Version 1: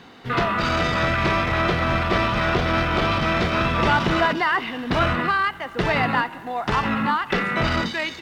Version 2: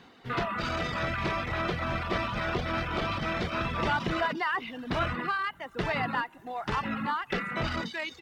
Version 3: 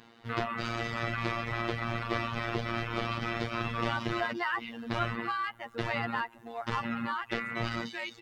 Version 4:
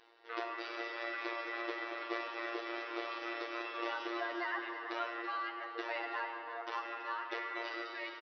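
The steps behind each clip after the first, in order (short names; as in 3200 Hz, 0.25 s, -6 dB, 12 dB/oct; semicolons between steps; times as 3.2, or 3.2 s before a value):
reverb removal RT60 0.65 s; gain -8 dB
robotiser 116 Hz
brick-wall FIR band-pass 280–6000 Hz; echo 0.331 s -11.5 dB; digital reverb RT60 4.3 s, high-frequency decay 0.4×, pre-delay 20 ms, DRR 3 dB; gain -7 dB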